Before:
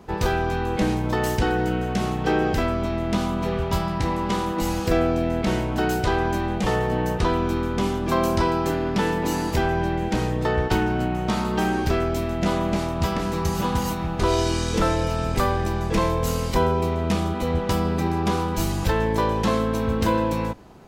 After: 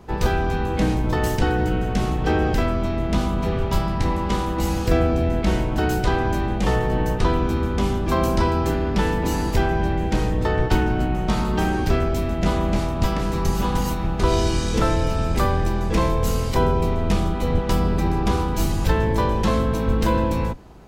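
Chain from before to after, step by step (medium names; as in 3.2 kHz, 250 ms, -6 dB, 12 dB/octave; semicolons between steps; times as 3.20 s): octave divider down 2 oct, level +2 dB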